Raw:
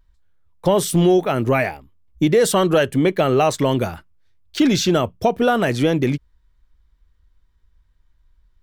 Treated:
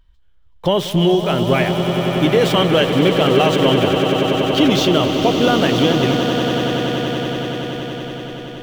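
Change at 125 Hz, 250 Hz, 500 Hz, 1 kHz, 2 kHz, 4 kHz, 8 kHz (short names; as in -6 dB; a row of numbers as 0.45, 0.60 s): +4.0, +3.5, +3.0, +3.5, +4.5, +9.5, -3.5 dB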